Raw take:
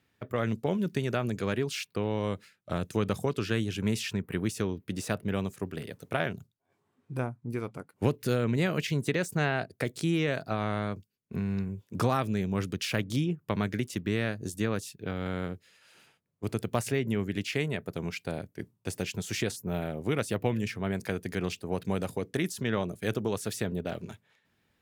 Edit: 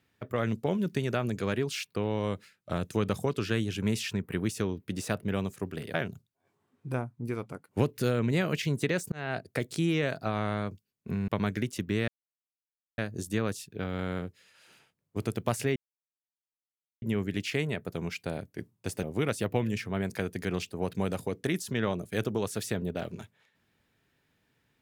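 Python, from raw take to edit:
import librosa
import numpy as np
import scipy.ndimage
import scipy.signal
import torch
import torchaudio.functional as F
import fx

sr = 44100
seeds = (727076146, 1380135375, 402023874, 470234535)

y = fx.edit(x, sr, fx.cut(start_s=5.94, length_s=0.25),
    fx.fade_in_span(start_s=9.37, length_s=0.27),
    fx.cut(start_s=11.53, length_s=1.92),
    fx.insert_silence(at_s=14.25, length_s=0.9),
    fx.insert_silence(at_s=17.03, length_s=1.26),
    fx.cut(start_s=19.04, length_s=0.89), tone=tone)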